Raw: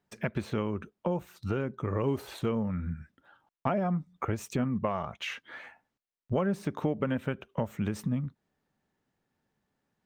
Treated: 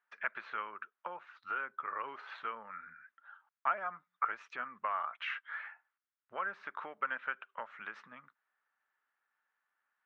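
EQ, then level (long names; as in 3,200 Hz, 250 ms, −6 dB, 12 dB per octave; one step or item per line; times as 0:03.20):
four-pole ladder band-pass 1,600 Hz, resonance 50%
high-frequency loss of the air 160 metres
+12.0 dB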